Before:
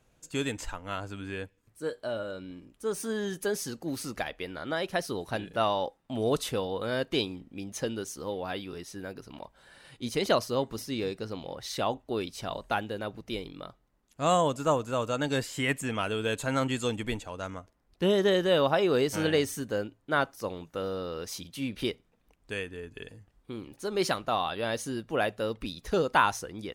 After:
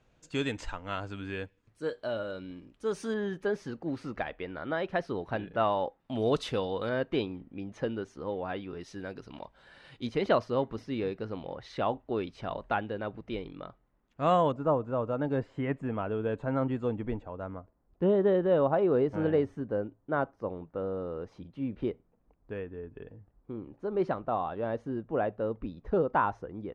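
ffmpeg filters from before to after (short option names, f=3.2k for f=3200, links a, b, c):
-af "asetnsamples=n=441:p=0,asendcmd='3.14 lowpass f 2100;6 lowpass f 4300;6.89 lowpass f 2000;8.81 lowpass f 4200;10.07 lowpass f 2200;14.52 lowpass f 1000',lowpass=4.6k"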